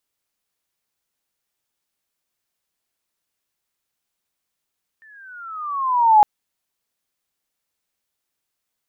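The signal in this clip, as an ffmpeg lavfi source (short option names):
-f lavfi -i "aevalsrc='pow(10,(-6.5+39*(t/1.21-1))/20)*sin(2*PI*1800*1.21/(-13.5*log(2)/12)*(exp(-13.5*log(2)/12*t/1.21)-1))':d=1.21:s=44100"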